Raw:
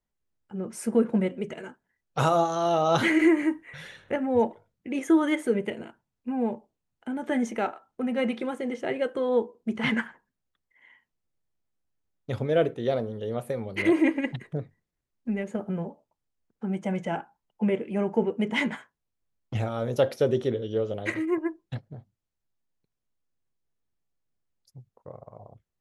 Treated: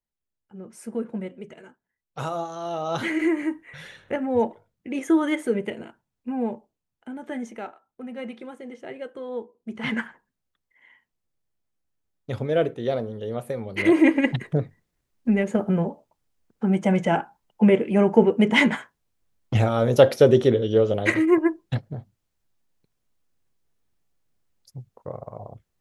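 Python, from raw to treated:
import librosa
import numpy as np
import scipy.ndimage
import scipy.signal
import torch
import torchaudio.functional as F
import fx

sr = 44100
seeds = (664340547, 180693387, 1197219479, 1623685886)

y = fx.gain(x, sr, db=fx.line((2.58, -7.0), (3.82, 1.0), (6.39, 1.0), (7.72, -8.0), (9.55, -8.0), (10.03, 1.0), (13.65, 1.0), (14.3, 8.5)))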